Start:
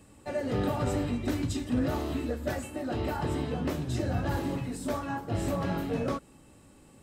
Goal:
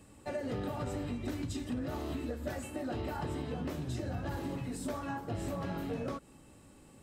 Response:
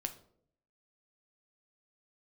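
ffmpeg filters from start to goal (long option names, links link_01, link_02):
-af "acompressor=threshold=-32dB:ratio=6,volume=-1.5dB"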